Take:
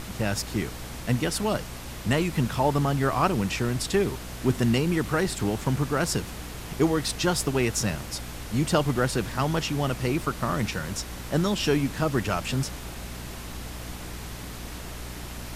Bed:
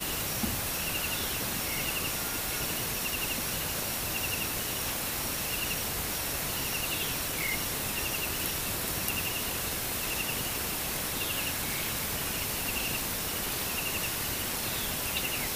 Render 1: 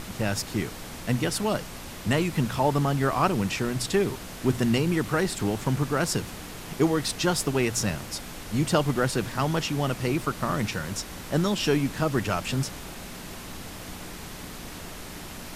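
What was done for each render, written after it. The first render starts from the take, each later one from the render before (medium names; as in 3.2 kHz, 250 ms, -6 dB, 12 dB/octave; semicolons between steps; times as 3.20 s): de-hum 60 Hz, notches 2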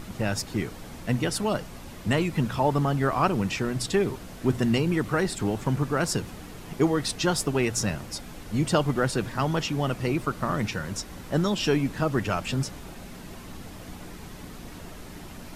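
noise reduction 7 dB, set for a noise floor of -40 dBFS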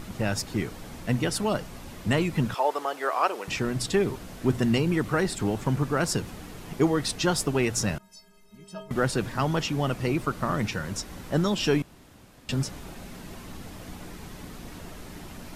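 2.54–3.48 s: high-pass 430 Hz 24 dB/octave; 7.98–8.91 s: inharmonic resonator 190 Hz, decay 0.64 s, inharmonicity 0.03; 11.82–12.49 s: room tone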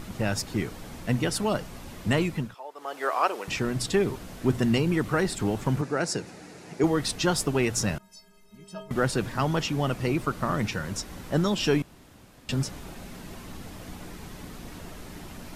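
2.25–3.04 s: dip -16.5 dB, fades 0.29 s; 5.81–6.84 s: cabinet simulation 180–9600 Hz, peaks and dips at 230 Hz -5 dB, 1.1 kHz -8 dB, 3.2 kHz -9 dB, 8.5 kHz -3 dB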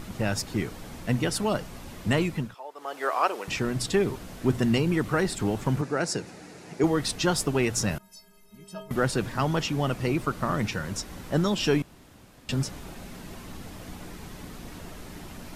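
7.91–8.96 s: peaking EQ 12 kHz +9.5 dB 0.39 oct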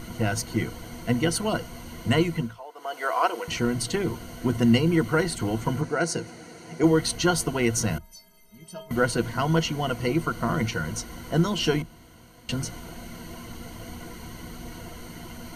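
rippled EQ curve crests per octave 1.9, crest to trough 12 dB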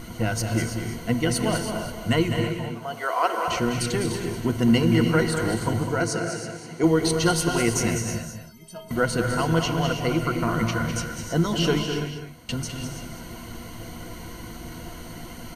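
delay 204 ms -7.5 dB; gated-style reverb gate 350 ms rising, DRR 5.5 dB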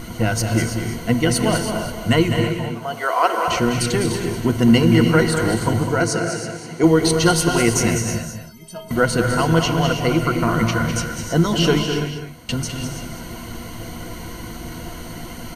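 trim +5.5 dB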